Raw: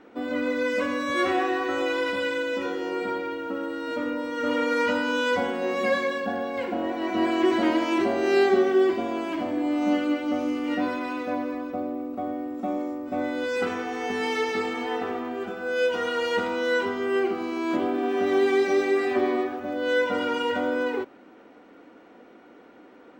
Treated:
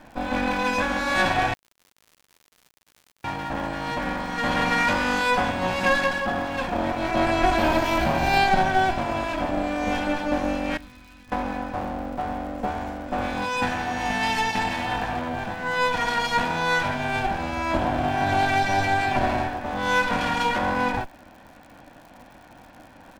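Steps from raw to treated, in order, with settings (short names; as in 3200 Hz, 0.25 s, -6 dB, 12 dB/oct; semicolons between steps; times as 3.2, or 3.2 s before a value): minimum comb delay 1.2 ms; 7.58–8.38 careless resampling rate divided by 2×, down none, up zero stuff; 10.77–11.32 passive tone stack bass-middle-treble 6-0-2; downsampling 32000 Hz; 1.54–3.24 mute; crackle 110/s -45 dBFS; gain +5 dB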